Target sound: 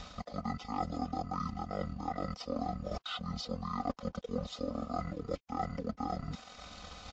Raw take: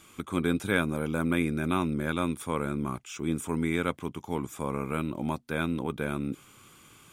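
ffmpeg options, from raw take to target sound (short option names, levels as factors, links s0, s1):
-filter_complex "[0:a]acrossover=split=300[s0][s1];[s0]acompressor=mode=upward:threshold=0.0158:ratio=2.5[s2];[s2][s1]amix=inputs=2:normalize=0,asetrate=23361,aresample=44100,atempo=1.88775,asplit=2[s3][s4];[s4]highpass=f=720:p=1,volume=3.55,asoftclip=type=tanh:threshold=0.266[s5];[s3][s5]amix=inputs=2:normalize=0,lowpass=f=2800:p=1,volume=0.501,asuperstop=centerf=1700:order=4:qfactor=3.2,aeval=exprs='sgn(val(0))*max(abs(val(0))-0.00168,0)':c=same,areverse,acompressor=threshold=0.00891:ratio=10,areverse,aecho=1:1:4:0.72,volume=2.37" -ar 16000 -c:a libvorbis -b:a 64k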